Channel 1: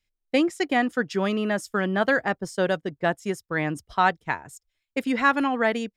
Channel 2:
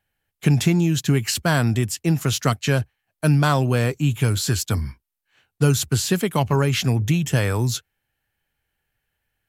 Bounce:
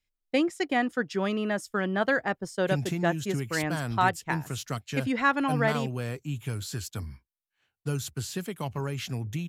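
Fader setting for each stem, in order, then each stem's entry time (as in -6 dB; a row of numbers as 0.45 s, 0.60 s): -3.5 dB, -13.0 dB; 0.00 s, 2.25 s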